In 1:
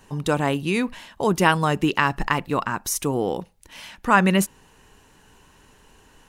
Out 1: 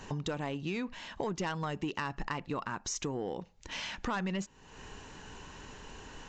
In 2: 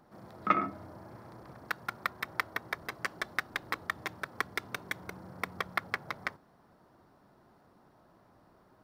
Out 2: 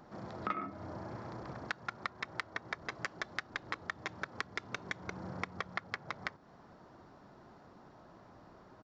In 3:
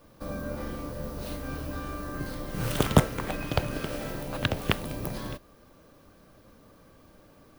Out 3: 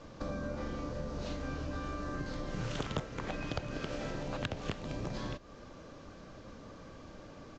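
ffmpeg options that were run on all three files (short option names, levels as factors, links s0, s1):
-af "aresample=16000,asoftclip=type=tanh:threshold=0.237,aresample=44100,acompressor=threshold=0.00794:ratio=4,volume=1.88"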